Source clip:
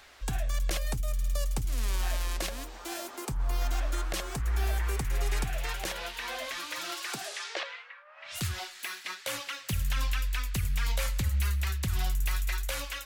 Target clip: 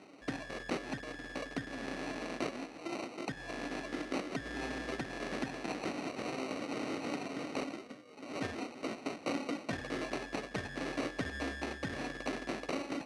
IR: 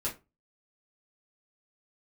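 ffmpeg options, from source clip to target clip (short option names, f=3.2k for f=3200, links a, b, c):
-af "equalizer=f=500:t=o:w=0.94:g=-7,acrusher=samples=26:mix=1:aa=0.000001,highpass=230,equalizer=f=270:t=q:w=4:g=9,equalizer=f=940:t=q:w=4:g=-7,equalizer=f=1.8k:t=q:w=4:g=8,equalizer=f=7.4k:t=q:w=4:g=-8,lowpass=f=8.4k:w=0.5412,lowpass=f=8.4k:w=1.3066"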